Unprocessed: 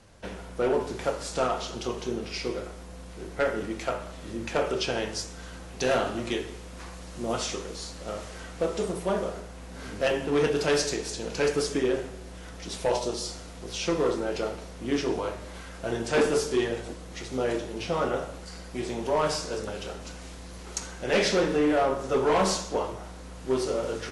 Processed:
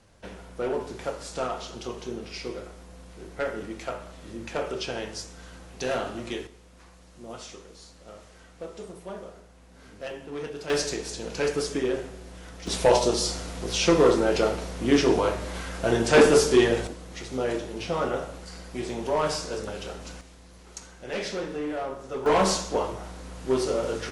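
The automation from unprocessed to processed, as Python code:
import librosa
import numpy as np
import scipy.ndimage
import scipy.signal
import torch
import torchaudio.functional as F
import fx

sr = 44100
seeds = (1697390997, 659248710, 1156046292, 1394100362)

y = fx.gain(x, sr, db=fx.steps((0.0, -3.5), (6.47, -11.0), (10.7, -1.0), (12.67, 7.0), (16.87, 0.0), (20.21, -8.0), (22.26, 2.0)))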